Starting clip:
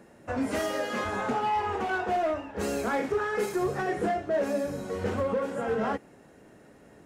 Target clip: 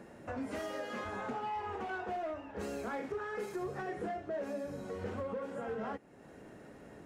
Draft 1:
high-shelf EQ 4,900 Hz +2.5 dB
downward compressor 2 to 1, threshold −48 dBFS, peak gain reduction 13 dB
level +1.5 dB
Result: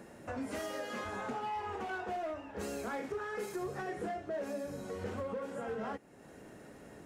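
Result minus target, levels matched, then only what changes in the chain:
8,000 Hz band +5.5 dB
change: high-shelf EQ 4,900 Hz −5.5 dB

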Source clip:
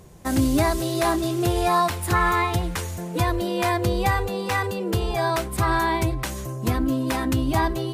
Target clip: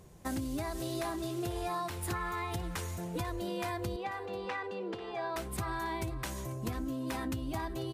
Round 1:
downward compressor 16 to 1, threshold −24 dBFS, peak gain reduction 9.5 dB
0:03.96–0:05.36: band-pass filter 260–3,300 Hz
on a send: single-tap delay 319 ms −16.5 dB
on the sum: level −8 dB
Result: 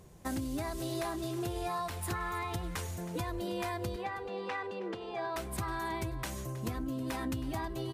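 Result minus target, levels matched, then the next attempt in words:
echo 173 ms early
downward compressor 16 to 1, threshold −24 dBFS, peak gain reduction 9.5 dB
0:03.96–0:05.36: band-pass filter 260–3,300 Hz
on a send: single-tap delay 492 ms −16.5 dB
on the sum: level −8 dB

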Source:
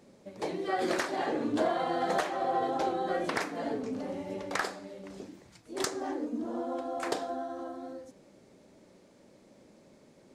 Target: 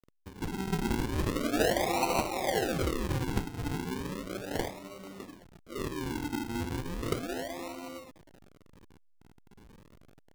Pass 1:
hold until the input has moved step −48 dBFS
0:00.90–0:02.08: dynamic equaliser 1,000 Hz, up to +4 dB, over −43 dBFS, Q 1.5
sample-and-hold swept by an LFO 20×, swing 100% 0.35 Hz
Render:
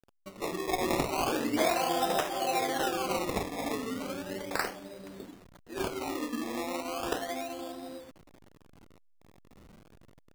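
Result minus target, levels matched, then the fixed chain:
sample-and-hold swept by an LFO: distortion −18 dB
hold until the input has moved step −48 dBFS
0:00.90–0:02.08: dynamic equaliser 1,000 Hz, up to +4 dB, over −43 dBFS, Q 1.5
sample-and-hold swept by an LFO 51×, swing 100% 0.35 Hz

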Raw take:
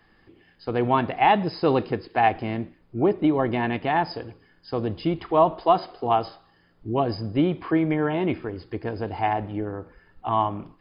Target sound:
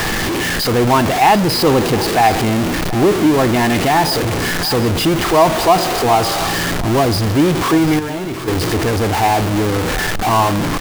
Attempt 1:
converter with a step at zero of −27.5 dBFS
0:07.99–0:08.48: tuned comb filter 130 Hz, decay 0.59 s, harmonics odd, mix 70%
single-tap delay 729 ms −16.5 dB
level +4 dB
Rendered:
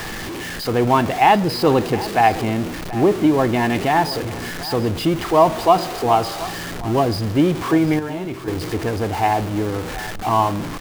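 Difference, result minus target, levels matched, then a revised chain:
converter with a step at zero: distortion −8 dB
converter with a step at zero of −16.5 dBFS
0:07.99–0:08.48: tuned comb filter 130 Hz, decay 0.59 s, harmonics odd, mix 70%
single-tap delay 729 ms −16.5 dB
level +4 dB

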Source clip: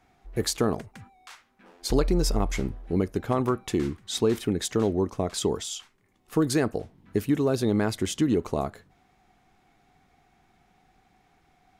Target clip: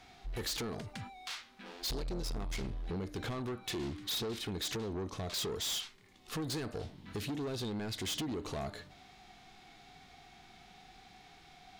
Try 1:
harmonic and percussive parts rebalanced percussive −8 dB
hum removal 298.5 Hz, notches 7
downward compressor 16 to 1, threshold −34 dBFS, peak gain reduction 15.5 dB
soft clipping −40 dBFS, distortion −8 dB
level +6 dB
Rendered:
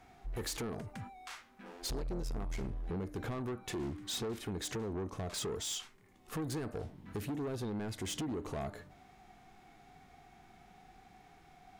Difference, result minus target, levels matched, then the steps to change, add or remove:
4,000 Hz band −4.0 dB
add after downward compressor: parametric band 4,000 Hz +12.5 dB 1.5 octaves

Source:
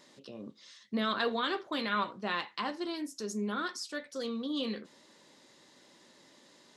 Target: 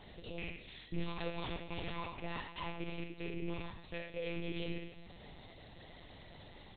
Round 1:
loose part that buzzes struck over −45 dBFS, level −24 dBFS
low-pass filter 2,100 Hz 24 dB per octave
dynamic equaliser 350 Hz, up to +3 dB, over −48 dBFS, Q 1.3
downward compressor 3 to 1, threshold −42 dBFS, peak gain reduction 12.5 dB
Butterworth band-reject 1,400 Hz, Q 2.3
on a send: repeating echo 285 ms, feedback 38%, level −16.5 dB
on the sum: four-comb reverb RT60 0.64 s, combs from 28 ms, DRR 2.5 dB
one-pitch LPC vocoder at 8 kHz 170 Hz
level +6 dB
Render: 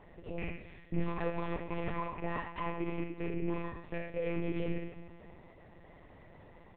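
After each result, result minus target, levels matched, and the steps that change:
downward compressor: peak gain reduction −5.5 dB; 2,000 Hz band −3.0 dB
change: downward compressor 3 to 1, threshold −50 dBFS, peak gain reduction 18 dB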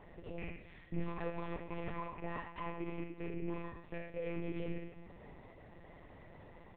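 2,000 Hz band −3.0 dB
remove: low-pass filter 2,100 Hz 24 dB per octave

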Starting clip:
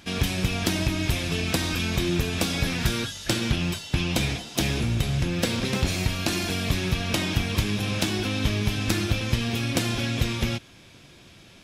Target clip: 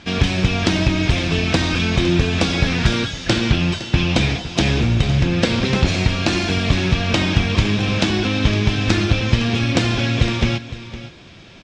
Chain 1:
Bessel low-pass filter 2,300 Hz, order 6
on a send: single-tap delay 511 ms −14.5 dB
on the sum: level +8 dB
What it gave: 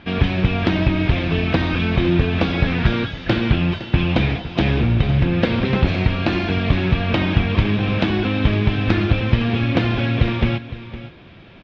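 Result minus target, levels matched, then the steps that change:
4,000 Hz band −5.0 dB
change: Bessel low-pass filter 4,700 Hz, order 6

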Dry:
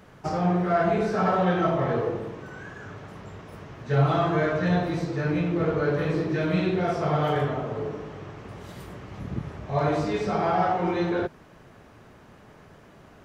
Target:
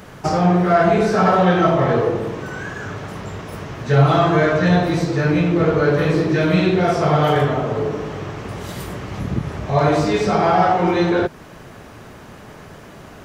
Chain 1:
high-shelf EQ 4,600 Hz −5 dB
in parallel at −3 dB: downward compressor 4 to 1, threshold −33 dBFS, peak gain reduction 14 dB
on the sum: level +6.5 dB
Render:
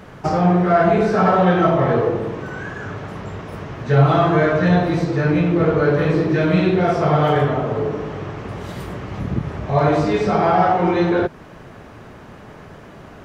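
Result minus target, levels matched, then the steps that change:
8,000 Hz band −7.5 dB
change: high-shelf EQ 4,600 Hz +6 dB

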